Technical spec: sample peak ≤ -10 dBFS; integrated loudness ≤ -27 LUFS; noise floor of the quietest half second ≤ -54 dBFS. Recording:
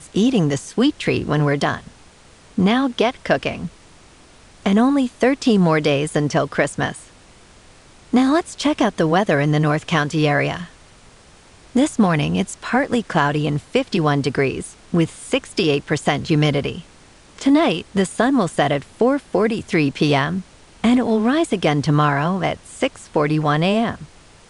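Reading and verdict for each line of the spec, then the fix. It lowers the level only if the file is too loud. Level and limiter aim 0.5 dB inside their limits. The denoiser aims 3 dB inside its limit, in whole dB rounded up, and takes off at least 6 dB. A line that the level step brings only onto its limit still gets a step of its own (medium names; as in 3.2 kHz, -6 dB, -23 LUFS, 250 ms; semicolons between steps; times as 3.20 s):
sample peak -3.0 dBFS: fail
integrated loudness -19.0 LUFS: fail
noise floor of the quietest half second -47 dBFS: fail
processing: trim -8.5 dB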